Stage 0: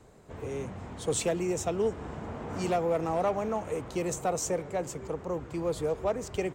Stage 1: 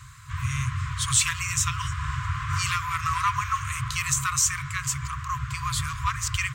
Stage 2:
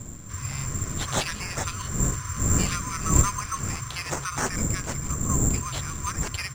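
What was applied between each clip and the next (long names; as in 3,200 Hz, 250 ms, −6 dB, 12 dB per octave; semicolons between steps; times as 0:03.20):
high-pass filter 57 Hz; brick-wall band-stop 140–980 Hz; in parallel at +2 dB: brickwall limiter −31 dBFS, peak gain reduction 11 dB; on the sum: level +8.5 dB
wind on the microphone 160 Hz −24 dBFS; bad sample-rate conversion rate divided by 6×, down none, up zero stuff; high-frequency loss of the air 100 metres; level −5.5 dB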